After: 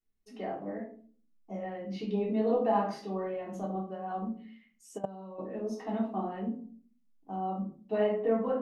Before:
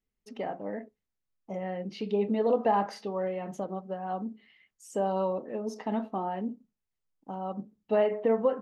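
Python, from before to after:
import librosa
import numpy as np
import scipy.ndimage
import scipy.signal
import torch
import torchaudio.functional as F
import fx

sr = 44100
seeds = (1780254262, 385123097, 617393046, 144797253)

y = fx.room_shoebox(x, sr, seeds[0], volume_m3=340.0, walls='furnished', distance_m=3.4)
y = fx.level_steps(y, sr, step_db=18, at=(4.97, 5.38), fade=0.02)
y = y * 10.0 ** (-8.5 / 20.0)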